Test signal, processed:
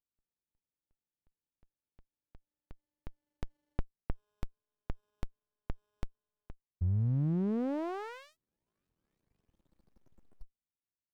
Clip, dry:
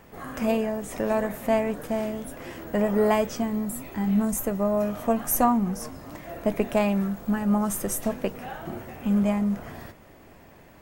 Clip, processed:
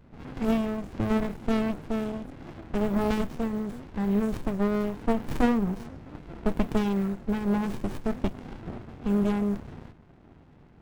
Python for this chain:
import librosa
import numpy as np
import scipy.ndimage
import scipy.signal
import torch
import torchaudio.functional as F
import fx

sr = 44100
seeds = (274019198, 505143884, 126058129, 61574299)

y = fx.env_lowpass(x, sr, base_hz=1500.0, full_db=-22.5)
y = fx.running_max(y, sr, window=65)